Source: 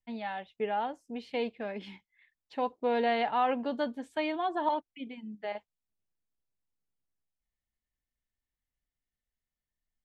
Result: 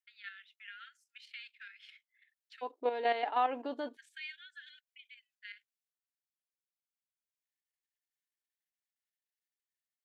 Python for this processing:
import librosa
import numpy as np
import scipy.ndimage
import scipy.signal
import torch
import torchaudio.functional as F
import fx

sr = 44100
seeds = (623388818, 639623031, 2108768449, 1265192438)

y = fx.level_steps(x, sr, step_db=9)
y = fx.brickwall_highpass(y, sr, low_hz=fx.steps((0.0, 1300.0), (2.61, 250.0), (3.95, 1400.0)))